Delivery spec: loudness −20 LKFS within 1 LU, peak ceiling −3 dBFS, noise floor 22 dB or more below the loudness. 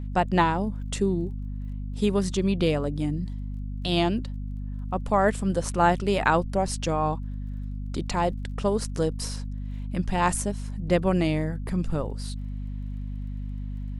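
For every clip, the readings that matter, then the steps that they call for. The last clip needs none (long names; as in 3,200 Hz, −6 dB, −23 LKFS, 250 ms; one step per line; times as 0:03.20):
crackle rate 23 per second; mains hum 50 Hz; hum harmonics up to 250 Hz; level of the hum −30 dBFS; integrated loudness −27.5 LKFS; sample peak −6.0 dBFS; target loudness −20.0 LKFS
→ click removal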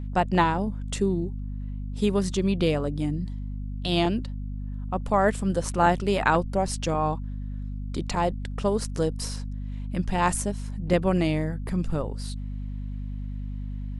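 crackle rate 0.071 per second; mains hum 50 Hz; hum harmonics up to 250 Hz; level of the hum −30 dBFS
→ hum removal 50 Hz, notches 5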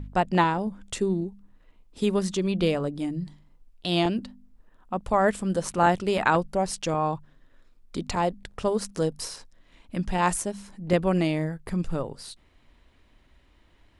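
mains hum none found; integrated loudness −27.0 LKFS; sample peak −6.0 dBFS; target loudness −20.0 LKFS
→ level +7 dB
brickwall limiter −3 dBFS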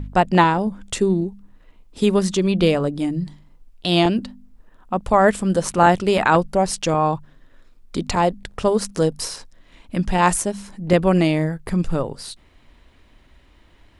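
integrated loudness −20.0 LKFS; sample peak −3.0 dBFS; background noise floor −53 dBFS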